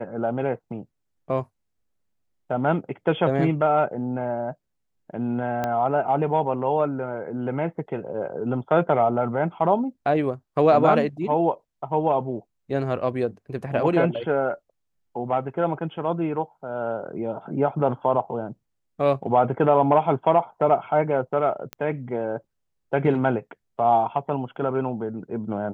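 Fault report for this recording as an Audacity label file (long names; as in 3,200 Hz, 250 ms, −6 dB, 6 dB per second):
5.640000	5.640000	click −13 dBFS
21.730000	21.730000	click −17 dBFS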